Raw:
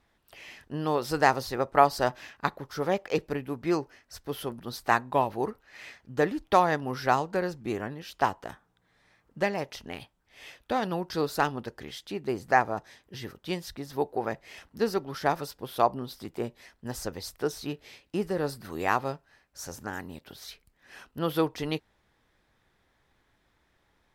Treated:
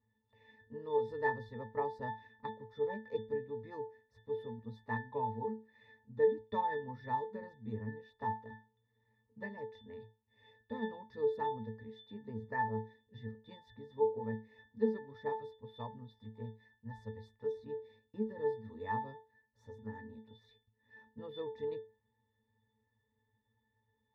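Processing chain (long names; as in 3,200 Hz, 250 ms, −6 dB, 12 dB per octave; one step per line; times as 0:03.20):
0:15.33–0:17.53: parametric band 340 Hz −6.5 dB 1.4 octaves
resonances in every octave A, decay 0.29 s
level +4.5 dB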